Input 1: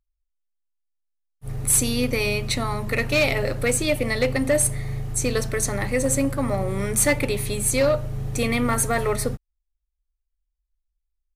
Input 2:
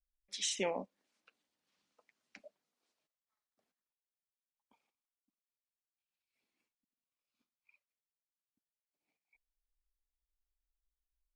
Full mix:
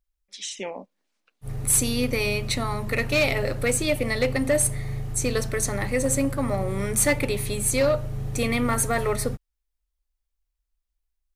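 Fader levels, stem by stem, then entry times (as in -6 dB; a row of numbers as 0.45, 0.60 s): -1.5, +2.0 dB; 0.00, 0.00 s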